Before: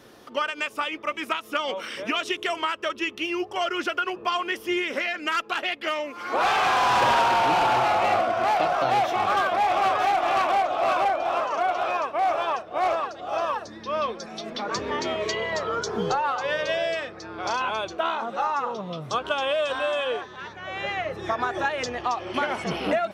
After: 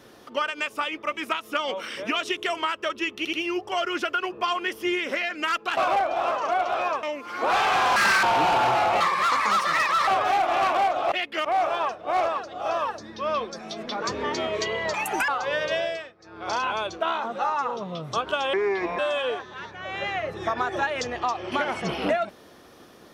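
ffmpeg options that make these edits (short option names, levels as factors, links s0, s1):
-filter_complex "[0:a]asplit=17[s0][s1][s2][s3][s4][s5][s6][s7][s8][s9][s10][s11][s12][s13][s14][s15][s16];[s0]atrim=end=3.252[s17];[s1]atrim=start=3.168:end=3.252[s18];[s2]atrim=start=3.168:end=5.612[s19];[s3]atrim=start=10.858:end=12.122[s20];[s4]atrim=start=5.938:end=6.874[s21];[s5]atrim=start=6.87:end=7.32,asetpts=PTS-STARTPTS,asetrate=72765,aresample=44100,atrim=end_sample=12027,asetpts=PTS-STARTPTS[s22];[s6]atrim=start=7.316:end=8.094[s23];[s7]atrim=start=8.09:end=9.82,asetpts=PTS-STARTPTS,asetrate=71001,aresample=44100[s24];[s8]atrim=start=9.816:end=10.862[s25];[s9]atrim=start=5.608:end=5.942[s26];[s10]atrim=start=12.118:end=15.614[s27];[s11]atrim=start=15.61:end=16.26,asetpts=PTS-STARTPTS,asetrate=82908,aresample=44100,atrim=end_sample=15247,asetpts=PTS-STARTPTS[s28];[s12]atrim=start=16.256:end=17.12,asetpts=PTS-STARTPTS,afade=t=out:st=0.504:d=0.36:silence=0.125893[s29];[s13]atrim=start=17.12:end=17.16,asetpts=PTS-STARTPTS,volume=0.126[s30];[s14]atrim=start=17.16:end=19.514,asetpts=PTS-STARTPTS,afade=t=in:d=0.36:silence=0.125893[s31];[s15]atrim=start=19.51:end=19.81,asetpts=PTS-STARTPTS,asetrate=29106,aresample=44100,atrim=end_sample=20045,asetpts=PTS-STARTPTS[s32];[s16]atrim=start=19.806[s33];[s17][s18]acrossfade=d=0.004:c1=hsin:c2=hsin[s34];[s34][s19]acrossfade=d=0.004:c1=hsin:c2=hsin[s35];[s35][s20]acrossfade=d=0.004:c1=hsin:c2=hsin[s36];[s36][s21]acrossfade=d=0.004:c1=hsin:c2=hsin[s37];[s37][s22]acrossfade=d=0.004:c1=hsin:c2=hsin[s38];[s38][s23]acrossfade=d=0.004:c1=hsin:c2=hsin[s39];[s39][s24]acrossfade=d=0.004:c1=hsin:c2=hsin[s40];[s40][s25]acrossfade=d=0.004:c1=hsin:c2=hsin[s41];[s41][s26]acrossfade=d=0.004:c1=hsin:c2=hsin[s42];[s42][s27]acrossfade=d=0.004:c1=hsin:c2=hsin[s43];[s43][s28]acrossfade=d=0.004:c1=hsin:c2=hsin[s44];[s29][s30][s31]concat=n=3:v=0:a=1[s45];[s44][s45]acrossfade=d=0.004:c1=hsin:c2=hsin[s46];[s46][s32]acrossfade=d=0.004:c1=hsin:c2=hsin[s47];[s47][s33]acrossfade=d=0.004:c1=hsin:c2=hsin"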